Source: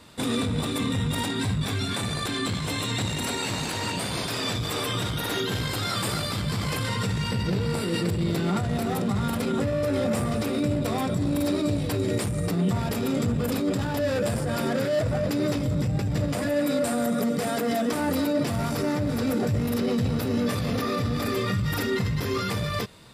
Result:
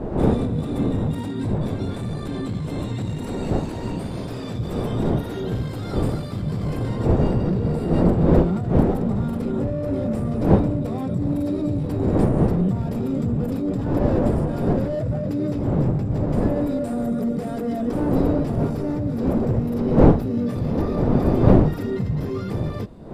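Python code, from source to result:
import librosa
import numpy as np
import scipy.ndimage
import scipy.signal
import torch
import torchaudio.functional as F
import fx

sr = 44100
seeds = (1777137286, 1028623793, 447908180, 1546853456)

y = fx.dmg_wind(x, sr, seeds[0], corner_hz=550.0, level_db=-25.0)
y = fx.tilt_shelf(y, sr, db=9.5, hz=860.0)
y = fx.hum_notches(y, sr, base_hz=50, count=2)
y = F.gain(torch.from_numpy(y), -5.5).numpy()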